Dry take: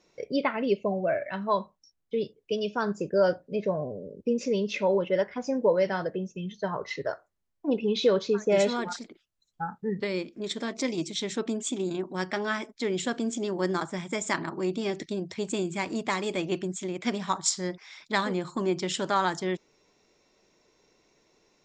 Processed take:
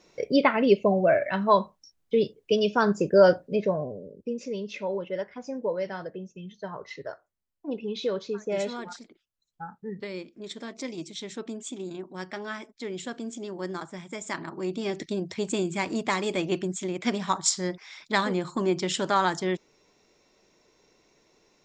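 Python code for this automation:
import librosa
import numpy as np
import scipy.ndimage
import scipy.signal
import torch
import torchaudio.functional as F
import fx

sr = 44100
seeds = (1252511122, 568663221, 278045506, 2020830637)

y = fx.gain(x, sr, db=fx.line((3.39, 6.0), (4.37, -6.0), (14.18, -6.0), (15.14, 2.0)))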